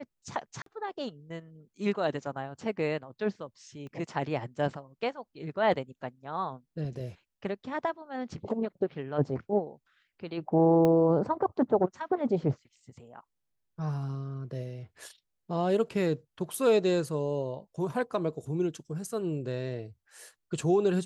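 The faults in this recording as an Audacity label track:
0.620000	0.660000	gap 43 ms
3.870000	3.870000	pop -34 dBFS
10.850000	10.850000	pop -15 dBFS

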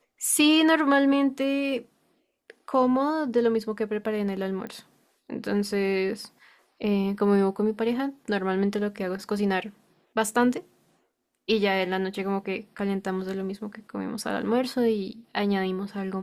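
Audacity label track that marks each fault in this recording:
4.670000	4.670000	pop -25 dBFS

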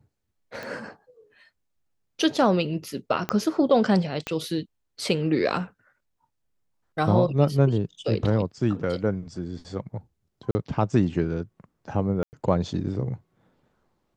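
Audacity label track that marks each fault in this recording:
0.630000	0.630000	pop -22 dBFS
3.290000	3.290000	pop -11 dBFS
4.270000	4.270000	pop -15 dBFS
10.510000	10.550000	gap 40 ms
12.230000	12.330000	gap 99 ms

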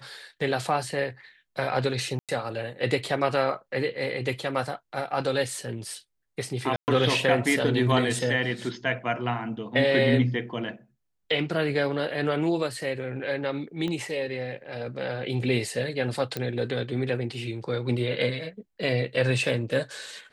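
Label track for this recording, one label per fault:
2.190000	2.290000	gap 97 ms
6.760000	6.880000	gap 0.119 s
13.880000	13.880000	pop -20 dBFS
16.370000	16.370000	pop -15 dBFS

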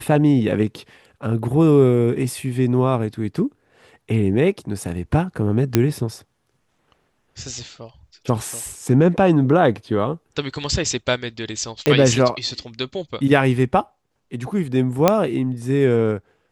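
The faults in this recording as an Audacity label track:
5.750000	5.750000	pop -1 dBFS
11.860000	11.860000	pop -4 dBFS
15.080000	15.080000	pop 0 dBFS

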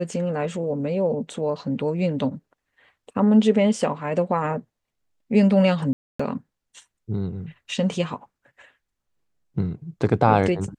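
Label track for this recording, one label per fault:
5.930000	6.200000	gap 0.265 s

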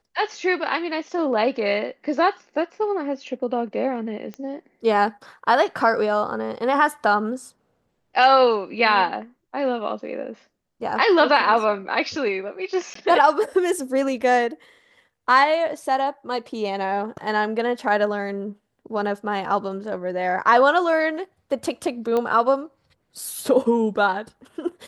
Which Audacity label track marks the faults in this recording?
4.340000	4.340000	pop -22 dBFS
12.940000	12.950000	gap 14 ms
22.170000	22.170000	pop -13 dBFS

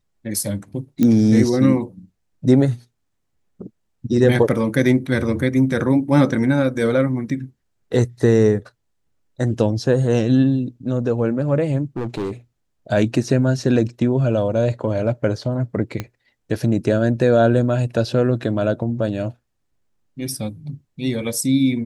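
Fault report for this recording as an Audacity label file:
1.030000	1.030000	pop -7 dBFS
11.960000	12.310000	clipped -20.5 dBFS
16.000000	16.000000	pop -11 dBFS

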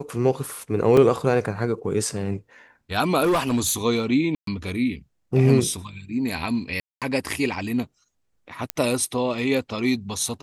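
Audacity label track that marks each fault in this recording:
0.970000	0.970000	gap 3.1 ms
3.230000	3.740000	clipped -16.5 dBFS
4.350000	4.470000	gap 0.123 s
6.800000	7.020000	gap 0.217 s
8.700000	8.700000	pop -6 dBFS

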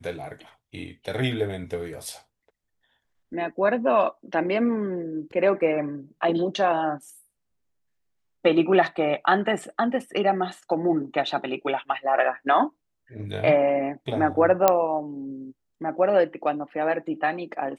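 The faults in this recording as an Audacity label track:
14.680000	14.680000	pop -3 dBFS

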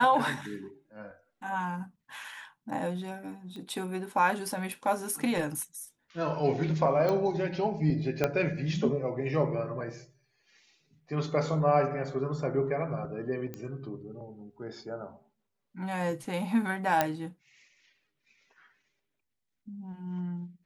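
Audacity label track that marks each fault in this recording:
3.560000	3.560000	pop -32 dBFS
7.090000	7.090000	pop -18 dBFS
8.240000	8.240000	pop -12 dBFS
13.540000	13.540000	pop -24 dBFS
17.010000	17.010000	pop -10 dBFS

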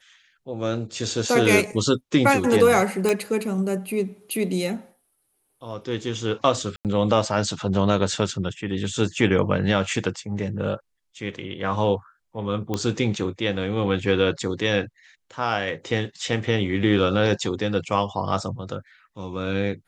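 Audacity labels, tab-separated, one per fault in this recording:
3.090000	3.090000	pop -9 dBFS
6.760000	6.850000	gap 88 ms
12.740000	12.740000	pop -12 dBFS

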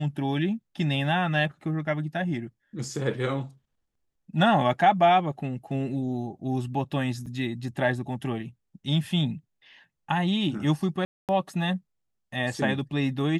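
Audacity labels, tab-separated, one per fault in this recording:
7.260000	7.270000	gap 5.5 ms
11.050000	11.290000	gap 0.238 s

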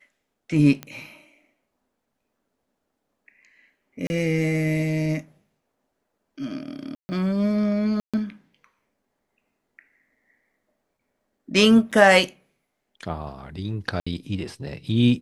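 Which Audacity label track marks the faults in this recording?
0.830000	0.830000	pop -17 dBFS
4.070000	4.100000	gap 30 ms
6.950000	7.090000	gap 0.14 s
8.000000	8.140000	gap 0.136 s
11.910000	11.920000	gap 6.3 ms
14.000000	14.060000	gap 65 ms

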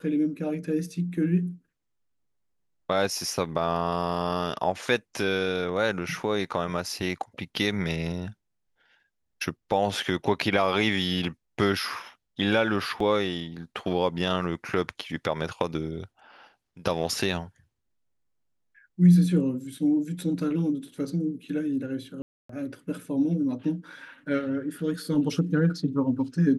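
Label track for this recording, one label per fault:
13.000000	13.000000	gap 3.6 ms
22.220000	22.490000	gap 0.274 s

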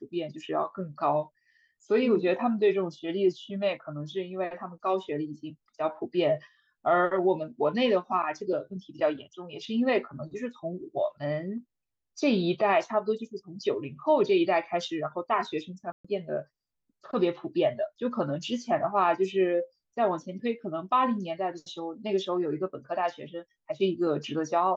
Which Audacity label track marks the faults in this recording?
15.920000	16.050000	gap 0.125 s

